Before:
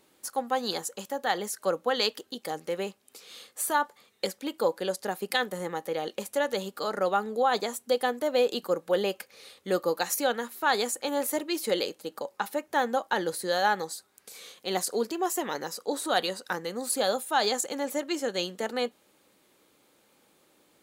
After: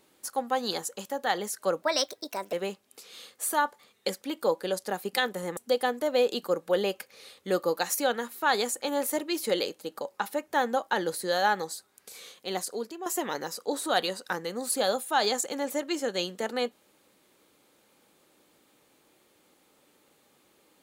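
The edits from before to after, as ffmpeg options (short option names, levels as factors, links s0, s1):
-filter_complex "[0:a]asplit=5[s0][s1][s2][s3][s4];[s0]atrim=end=1.824[s5];[s1]atrim=start=1.82:end=2.7,asetpts=PTS-STARTPTS,asetrate=54684,aresample=44100[s6];[s2]atrim=start=2.696:end=5.742[s7];[s3]atrim=start=7.768:end=15.26,asetpts=PTS-STARTPTS,afade=t=out:st=6.622:d=0.87:silence=0.298538[s8];[s4]atrim=start=15.26,asetpts=PTS-STARTPTS,afade=t=in:d=0.004:c=hsin:silence=0.298538[s9];[s5][s6]acrossfade=d=0.004:c1=hsin:c2=hsin[s10];[s10][s7]acrossfade=d=0.004:c1=hsin:c2=hsin[s11];[s8][s9]concat=n=2:v=0:a=1[s12];[s11][s12]acrossfade=d=0.004:c1=hsin:c2=hsin"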